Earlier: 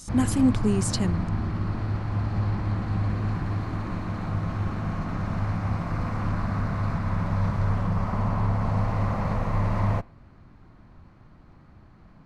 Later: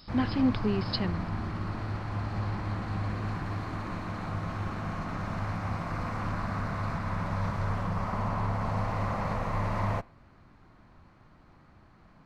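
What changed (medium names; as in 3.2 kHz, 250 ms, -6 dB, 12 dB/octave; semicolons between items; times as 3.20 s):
speech: add brick-wall FIR low-pass 5.3 kHz; master: add bass shelf 360 Hz -7.5 dB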